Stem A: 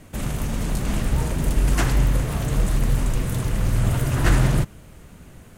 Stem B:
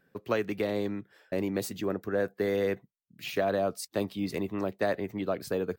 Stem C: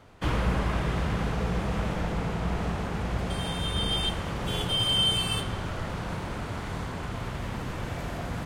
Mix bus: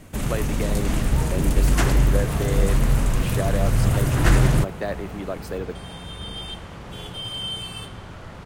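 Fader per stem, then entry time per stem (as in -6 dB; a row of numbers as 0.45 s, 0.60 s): +1.0 dB, 0.0 dB, -6.0 dB; 0.00 s, 0.00 s, 2.45 s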